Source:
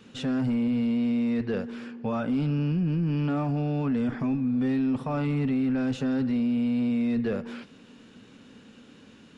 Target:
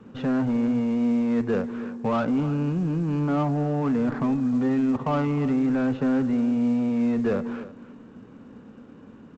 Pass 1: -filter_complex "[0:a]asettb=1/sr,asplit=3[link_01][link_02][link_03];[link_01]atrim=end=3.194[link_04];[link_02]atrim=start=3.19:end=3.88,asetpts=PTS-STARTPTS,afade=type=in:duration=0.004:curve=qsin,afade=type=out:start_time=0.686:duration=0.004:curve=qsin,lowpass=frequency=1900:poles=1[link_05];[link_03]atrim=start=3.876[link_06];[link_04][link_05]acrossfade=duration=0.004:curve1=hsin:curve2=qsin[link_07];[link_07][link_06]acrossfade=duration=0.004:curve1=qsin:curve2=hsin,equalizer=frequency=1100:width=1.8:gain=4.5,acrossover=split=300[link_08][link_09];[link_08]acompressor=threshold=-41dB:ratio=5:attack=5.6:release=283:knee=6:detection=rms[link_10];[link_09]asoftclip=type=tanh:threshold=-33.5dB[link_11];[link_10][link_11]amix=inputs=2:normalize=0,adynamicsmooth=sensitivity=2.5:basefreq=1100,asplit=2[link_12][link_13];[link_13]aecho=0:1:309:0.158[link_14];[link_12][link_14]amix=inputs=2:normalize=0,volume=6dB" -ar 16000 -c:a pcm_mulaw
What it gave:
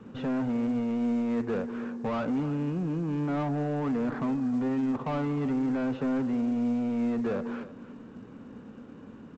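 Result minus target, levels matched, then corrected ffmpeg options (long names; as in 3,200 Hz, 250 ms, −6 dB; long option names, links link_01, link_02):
soft clipping: distortion +15 dB; downward compressor: peak gain reduction +7.5 dB
-filter_complex "[0:a]asettb=1/sr,asplit=3[link_01][link_02][link_03];[link_01]atrim=end=3.194[link_04];[link_02]atrim=start=3.19:end=3.88,asetpts=PTS-STARTPTS,afade=type=in:duration=0.004:curve=qsin,afade=type=out:start_time=0.686:duration=0.004:curve=qsin,lowpass=frequency=1900:poles=1[link_05];[link_03]atrim=start=3.876[link_06];[link_04][link_05]acrossfade=duration=0.004:curve1=hsin:curve2=qsin[link_07];[link_07][link_06]acrossfade=duration=0.004:curve1=qsin:curve2=hsin,equalizer=frequency=1100:width=1.8:gain=4.5,acrossover=split=300[link_08][link_09];[link_08]acompressor=threshold=-31.5dB:ratio=5:attack=5.6:release=283:knee=6:detection=rms[link_10];[link_09]asoftclip=type=tanh:threshold=-21.5dB[link_11];[link_10][link_11]amix=inputs=2:normalize=0,adynamicsmooth=sensitivity=2.5:basefreq=1100,asplit=2[link_12][link_13];[link_13]aecho=0:1:309:0.158[link_14];[link_12][link_14]amix=inputs=2:normalize=0,volume=6dB" -ar 16000 -c:a pcm_mulaw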